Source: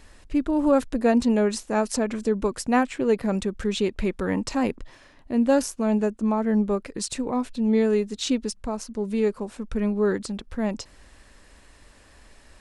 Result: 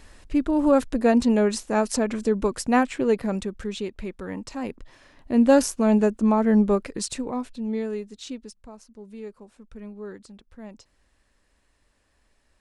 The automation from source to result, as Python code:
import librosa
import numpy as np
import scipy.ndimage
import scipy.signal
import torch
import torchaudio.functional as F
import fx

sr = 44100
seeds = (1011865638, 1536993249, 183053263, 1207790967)

y = fx.gain(x, sr, db=fx.line((3.01, 1.0), (3.99, -8.0), (4.57, -8.0), (5.4, 3.5), (6.74, 3.5), (7.59, -6.0), (8.81, -15.0)))